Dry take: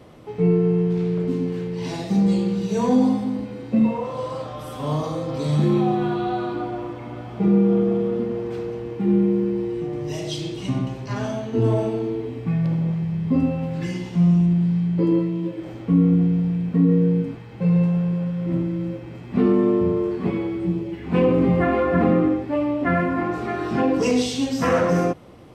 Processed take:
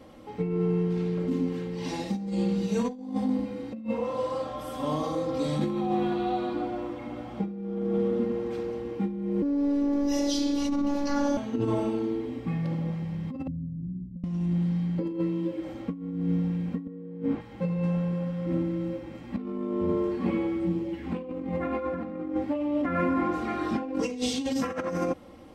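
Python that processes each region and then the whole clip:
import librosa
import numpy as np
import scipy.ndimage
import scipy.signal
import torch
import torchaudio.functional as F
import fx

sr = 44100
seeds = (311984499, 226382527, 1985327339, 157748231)

y = fx.chain(x, sr, fx.robotise(hz=284.0),
    fx.env_flatten(amount_pct=70), at=(9.42, 11.37))
y = fx.chain(y, sr, fx.cheby2_lowpass(hz=1100.0, order=4, stop_db=80),
    fx.over_compress(threshold_db=-27.0, ratio=-1.0), at=(13.47, 14.24))
y = fx.chain(y, sr, fx.lowpass(hz=1500.0, slope=6),
    fx.over_compress(threshold_db=-30.0, ratio=-1.0),
    fx.low_shelf(hz=86.0, db=-11.5), at=(16.87, 17.41))
y = y + 0.65 * np.pad(y, (int(3.7 * sr / 1000.0), 0))[:len(y)]
y = fx.over_compress(y, sr, threshold_db=-20.0, ratio=-0.5)
y = F.gain(torch.from_numpy(y), -6.5).numpy()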